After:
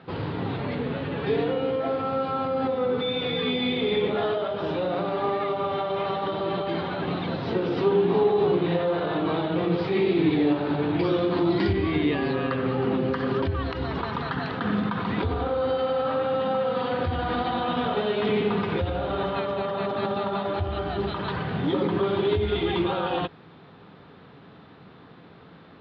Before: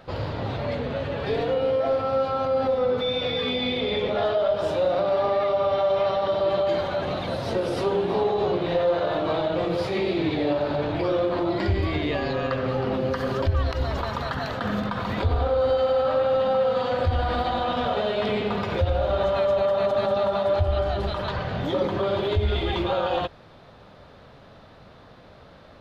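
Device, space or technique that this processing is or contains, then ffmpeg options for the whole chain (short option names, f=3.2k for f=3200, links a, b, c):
guitar cabinet: -filter_complex "[0:a]asettb=1/sr,asplit=3[a][b][c];[a]atrim=end=10.994[d];[b]atrim=start=10.99:end=11.73,asetpts=PTS-STARTPTS,afade=t=in:d=0.004:c=qsin,afade=t=out:st=0.736:d=0.004:c=qsin,bass=f=250:g=2,treble=f=4k:g=12[e];[c]atrim=start=11.726[f];[d][e]acrossfade=d=0.004:c1=hsin:c2=qsin[g];[g][f]acrossfade=d=0.004:c1=qsin:c2=hsin,highpass=110,equalizer=f=170:t=q:w=4:g=7,equalizer=f=290:t=q:w=4:g=5,equalizer=f=410:t=q:w=4:g=4,equalizer=f=590:t=q:w=4:g=-10,lowpass=f=3.9k:w=0.5412,lowpass=f=3.9k:w=1.3066"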